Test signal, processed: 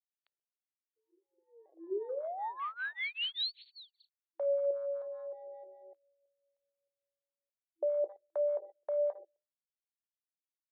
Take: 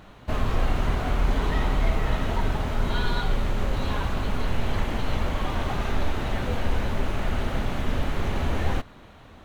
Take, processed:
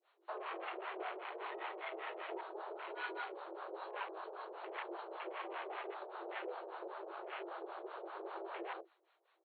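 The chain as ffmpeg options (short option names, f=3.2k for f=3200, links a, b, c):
-filter_complex "[0:a]bandreject=f=60:t=h:w=6,bandreject=f=120:t=h:w=6,bandreject=f=180:t=h:w=6,bandreject=f=240:t=h:w=6,bandreject=f=300:t=h:w=6,bandreject=f=360:t=h:w=6,bandreject=f=420:t=h:w=6,bandreject=f=480:t=h:w=6,bandreject=f=540:t=h:w=6,bandreject=f=600:t=h:w=6,asplit=2[a][b];[b]adelay=130,lowpass=f=1.9k:p=1,volume=-20.5dB,asplit=2[c][d];[d]adelay=130,lowpass=f=1.9k:p=1,volume=0.26[e];[a][c][e]amix=inputs=3:normalize=0,afwtdn=0.02,adynamicequalizer=threshold=0.0112:dfrequency=1400:dqfactor=0.7:tfrequency=1400:tqfactor=0.7:attack=5:release=100:ratio=0.375:range=2.5:mode=cutabove:tftype=bell,acrossover=split=800[f][g];[f]alimiter=limit=-21dB:level=0:latency=1:release=70[h];[h][g]amix=inputs=2:normalize=0,acrossover=split=650[i][j];[i]aeval=exprs='val(0)*(1-1/2+1/2*cos(2*PI*5.1*n/s))':c=same[k];[j]aeval=exprs='val(0)*(1-1/2-1/2*cos(2*PI*5.1*n/s))':c=same[l];[k][l]amix=inputs=2:normalize=0,afftfilt=real='re*between(b*sr/4096,330,4500)':imag='im*between(b*sr/4096,330,4500)':win_size=4096:overlap=0.75,volume=-2dB" -ar 24000 -c:a libmp3lame -b:a 64k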